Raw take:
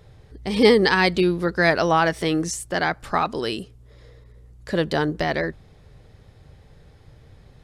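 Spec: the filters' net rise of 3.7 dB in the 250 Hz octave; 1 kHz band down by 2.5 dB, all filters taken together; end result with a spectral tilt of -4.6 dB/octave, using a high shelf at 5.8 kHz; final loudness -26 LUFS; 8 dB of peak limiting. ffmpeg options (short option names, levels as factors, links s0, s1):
-af "equalizer=f=250:t=o:g=5.5,equalizer=f=1000:t=o:g=-4,highshelf=f=5800:g=8.5,volume=0.631,alimiter=limit=0.2:level=0:latency=1"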